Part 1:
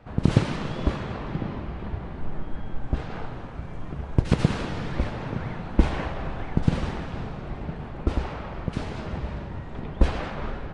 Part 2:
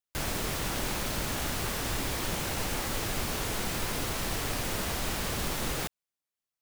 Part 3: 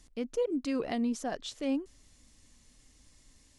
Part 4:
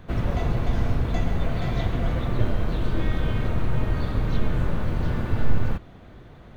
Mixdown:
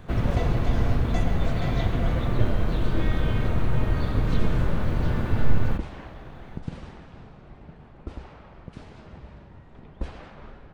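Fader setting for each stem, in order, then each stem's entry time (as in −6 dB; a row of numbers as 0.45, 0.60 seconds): −12.5 dB, muted, −11.0 dB, +0.5 dB; 0.00 s, muted, 0.00 s, 0.00 s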